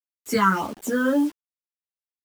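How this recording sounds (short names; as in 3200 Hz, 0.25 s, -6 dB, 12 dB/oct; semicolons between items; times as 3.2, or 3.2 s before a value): phasing stages 8, 1.7 Hz, lowest notch 680–2500 Hz; a quantiser's noise floor 8-bit, dither none; a shimmering, thickened sound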